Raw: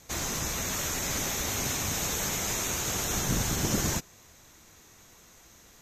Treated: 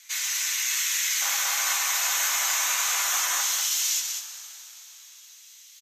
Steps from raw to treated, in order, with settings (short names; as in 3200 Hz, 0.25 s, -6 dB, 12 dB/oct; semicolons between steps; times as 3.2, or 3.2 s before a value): ladder high-pass 1600 Hz, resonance 25%, from 1.2 s 870 Hz, from 3.41 s 2400 Hz; echo 0.198 s -5.5 dB; two-slope reverb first 0.23 s, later 3.7 s, from -19 dB, DRR 0.5 dB; gain +9 dB